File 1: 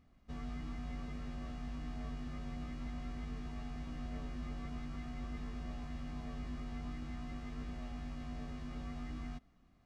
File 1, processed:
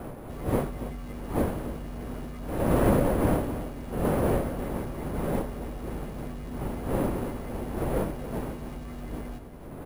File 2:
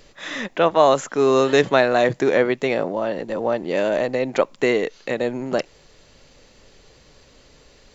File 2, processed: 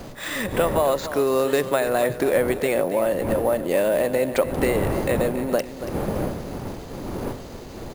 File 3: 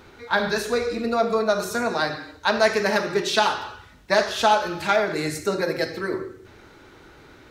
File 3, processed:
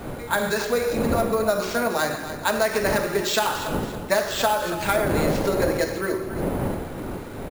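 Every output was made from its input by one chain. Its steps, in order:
G.711 law mismatch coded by mu; wind noise 450 Hz -29 dBFS; compressor, threshold -18 dBFS; careless resampling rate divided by 4×, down none, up hold; dynamic EQ 550 Hz, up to +5 dB, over -39 dBFS, Q 6.2; feedback echo 0.281 s, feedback 37%, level -12 dB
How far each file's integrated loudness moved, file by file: +14.5, -2.5, -1.0 LU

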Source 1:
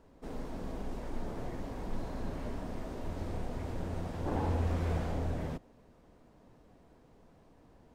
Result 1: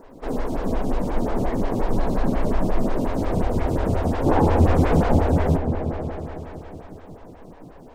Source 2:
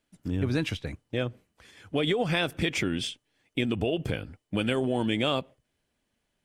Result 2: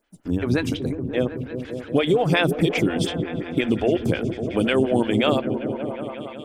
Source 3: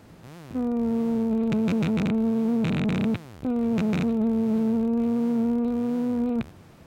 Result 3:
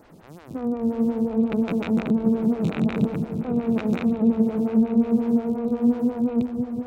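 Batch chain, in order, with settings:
repeats that get brighter 0.186 s, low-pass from 200 Hz, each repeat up 1 oct, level -3 dB; photocell phaser 5.6 Hz; match loudness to -23 LUFS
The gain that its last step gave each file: +18.0, +9.0, +2.5 dB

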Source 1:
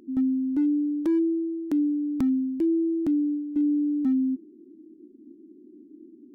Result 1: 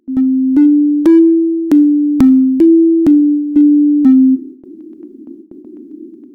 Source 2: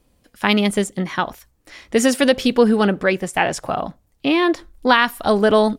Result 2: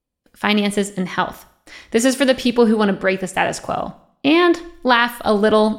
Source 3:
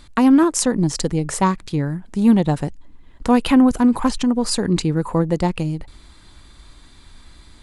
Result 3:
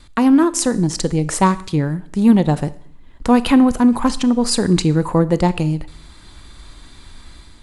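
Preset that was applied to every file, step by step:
gate with hold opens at -42 dBFS; AGC gain up to 5 dB; Schroeder reverb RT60 0.63 s, combs from 26 ms, DRR 15.5 dB; normalise peaks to -1.5 dBFS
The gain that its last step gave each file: +11.0, -0.5, 0.0 dB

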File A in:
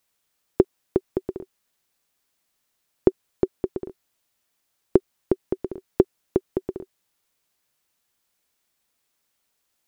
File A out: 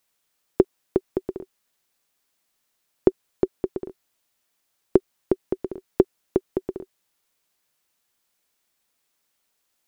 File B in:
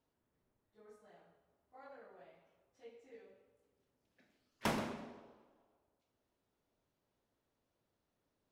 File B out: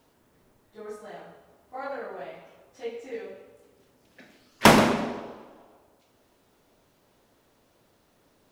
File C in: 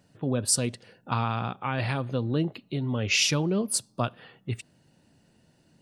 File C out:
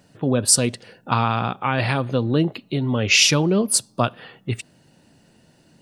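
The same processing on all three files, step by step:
bell 62 Hz -4 dB 2.7 oct; normalise peaks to -1.5 dBFS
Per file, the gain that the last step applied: +0.5, +21.0, +8.5 dB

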